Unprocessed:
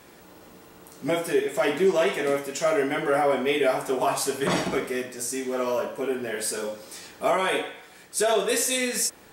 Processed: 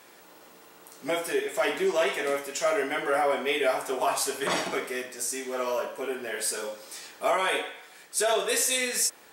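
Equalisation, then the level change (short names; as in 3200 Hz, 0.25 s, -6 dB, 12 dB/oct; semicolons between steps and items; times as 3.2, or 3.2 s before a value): low shelf 150 Hz -8 dB; low shelf 300 Hz -11 dB; 0.0 dB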